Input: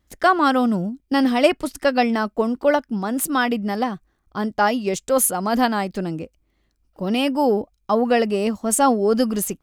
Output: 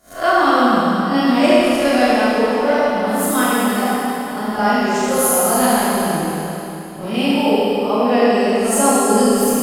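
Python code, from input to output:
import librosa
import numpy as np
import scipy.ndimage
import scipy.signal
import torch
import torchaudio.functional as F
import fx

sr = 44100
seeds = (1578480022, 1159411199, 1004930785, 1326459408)

y = fx.spec_swells(x, sr, rise_s=0.31)
y = fx.rev_schroeder(y, sr, rt60_s=3.3, comb_ms=25, drr_db=-8.5)
y = y * librosa.db_to_amplitude(-5.0)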